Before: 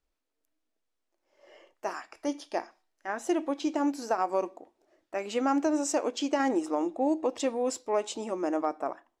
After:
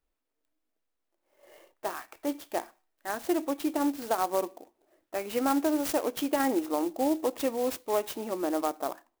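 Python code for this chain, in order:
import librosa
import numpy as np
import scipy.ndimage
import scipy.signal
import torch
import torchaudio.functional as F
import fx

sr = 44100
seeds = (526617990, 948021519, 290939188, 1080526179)

y = fx.clock_jitter(x, sr, seeds[0], jitter_ms=0.047)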